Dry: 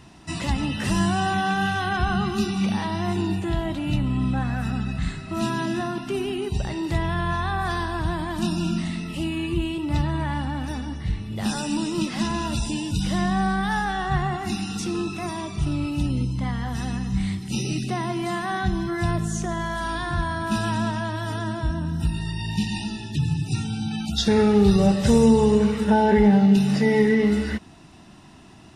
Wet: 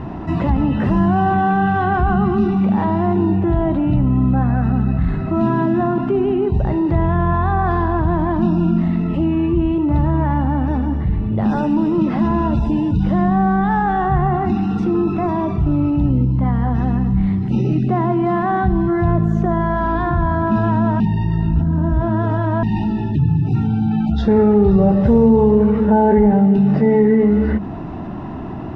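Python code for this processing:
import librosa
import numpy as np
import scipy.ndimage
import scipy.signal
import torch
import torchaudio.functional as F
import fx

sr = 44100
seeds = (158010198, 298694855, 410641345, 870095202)

y = fx.edit(x, sr, fx.reverse_span(start_s=21.0, length_s=1.63), tone=tone)
y = scipy.signal.sosfilt(scipy.signal.butter(2, 1000.0, 'lowpass', fs=sr, output='sos'), y)
y = fx.hum_notches(y, sr, base_hz=50, count=4)
y = fx.env_flatten(y, sr, amount_pct=50)
y = y * 10.0 ** (3.5 / 20.0)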